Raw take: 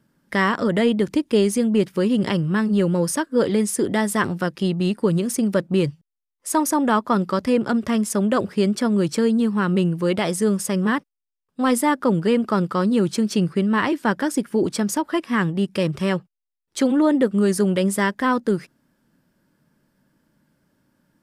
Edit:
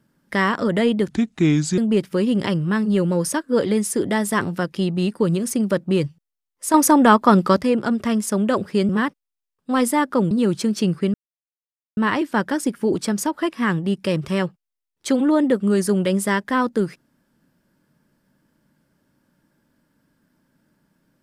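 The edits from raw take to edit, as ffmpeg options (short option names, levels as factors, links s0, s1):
-filter_complex "[0:a]asplit=8[s0][s1][s2][s3][s4][s5][s6][s7];[s0]atrim=end=1.104[s8];[s1]atrim=start=1.1:end=1.61,asetpts=PTS-STARTPTS,asetrate=33075,aresample=44100[s9];[s2]atrim=start=1.606:end=6.572[s10];[s3]atrim=start=6.568:end=7.442,asetpts=PTS-STARTPTS,volume=2[s11];[s4]atrim=start=7.438:end=8.722[s12];[s5]atrim=start=10.788:end=12.212[s13];[s6]atrim=start=12.848:end=13.68,asetpts=PTS-STARTPTS,afade=t=out:st=0.828:d=0.004:c=hsin,apad=pad_dur=0.83[s14];[s7]atrim=start=13.68,asetpts=PTS-STARTPTS,afade=t=in:d=0.004:c=hsin[s15];[s8][s9]acrossfade=d=0.004:c1=hsin:c2=hsin[s16];[s16][s10]acrossfade=d=0.004:c1=hsin:c2=hsin[s17];[s17][s11]acrossfade=d=0.004:c1=hsin:c2=hsin[s18];[s18][s12]acrossfade=d=0.004:c1=hsin:c2=hsin[s19];[s19][s13]acrossfade=d=0.004:c1=hsin:c2=hsin[s20];[s14][s15]concat=n=2:v=0:a=1[s21];[s20][s21]acrossfade=d=0.004:c1=hsin:c2=hsin"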